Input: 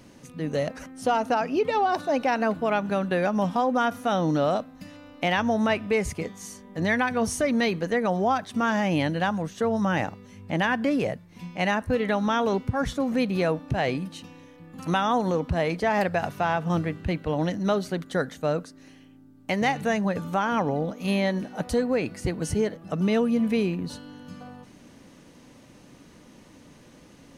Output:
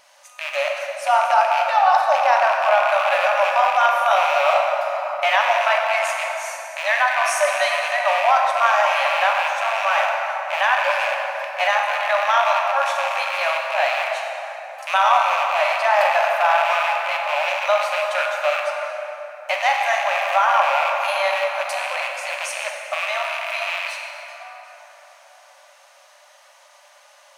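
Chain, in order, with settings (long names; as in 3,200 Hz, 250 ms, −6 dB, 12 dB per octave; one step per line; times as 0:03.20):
loose part that buzzes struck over −33 dBFS, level −19 dBFS
linear-phase brick-wall high-pass 540 Hz
dense smooth reverb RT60 4.3 s, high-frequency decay 0.45×, DRR −1 dB
dynamic equaliser 1,100 Hz, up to +5 dB, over −38 dBFS, Q 1.6
level +3.5 dB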